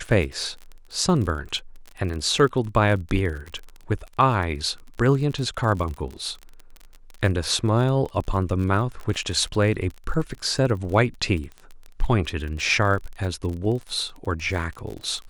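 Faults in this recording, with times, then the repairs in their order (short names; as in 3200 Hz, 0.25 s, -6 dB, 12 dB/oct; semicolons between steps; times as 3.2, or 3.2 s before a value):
crackle 38/s -30 dBFS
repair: de-click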